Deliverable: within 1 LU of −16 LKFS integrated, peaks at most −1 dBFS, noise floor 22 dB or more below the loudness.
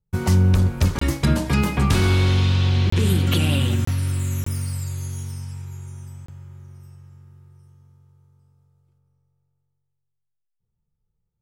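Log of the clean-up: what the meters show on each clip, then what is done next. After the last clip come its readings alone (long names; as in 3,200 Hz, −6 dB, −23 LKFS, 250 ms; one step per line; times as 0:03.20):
number of dropouts 5; longest dropout 24 ms; integrated loudness −20.5 LKFS; sample peak −7.0 dBFS; target loudness −16.0 LKFS
→ repair the gap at 0:00.99/0:02.90/0:03.85/0:04.44/0:06.26, 24 ms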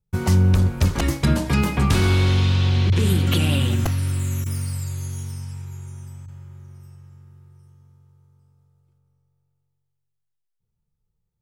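number of dropouts 0; integrated loudness −20.5 LKFS; sample peak −7.0 dBFS; target loudness −16.0 LKFS
→ level +4.5 dB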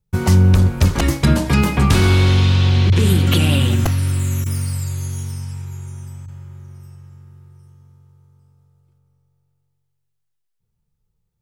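integrated loudness −16.0 LKFS; sample peak −2.5 dBFS; background noise floor −72 dBFS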